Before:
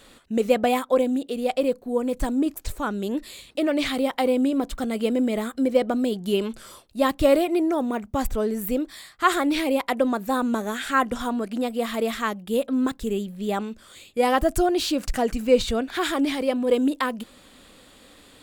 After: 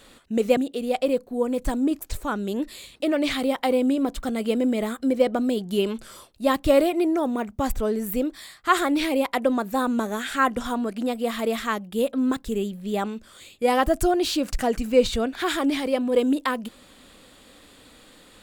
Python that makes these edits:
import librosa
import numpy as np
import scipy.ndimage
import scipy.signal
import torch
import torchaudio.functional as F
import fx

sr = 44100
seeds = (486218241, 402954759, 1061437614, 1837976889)

y = fx.edit(x, sr, fx.cut(start_s=0.57, length_s=0.55), tone=tone)